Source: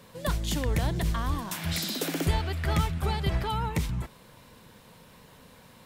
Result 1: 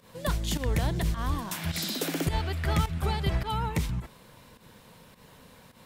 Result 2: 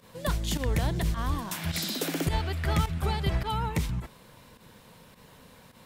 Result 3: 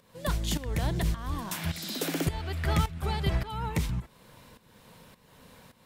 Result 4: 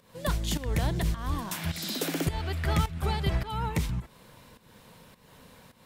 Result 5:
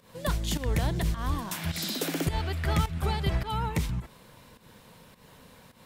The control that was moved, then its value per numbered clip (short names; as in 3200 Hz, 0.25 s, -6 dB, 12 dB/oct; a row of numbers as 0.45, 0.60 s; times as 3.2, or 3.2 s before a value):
pump, release: 107, 72, 497, 299, 160 ms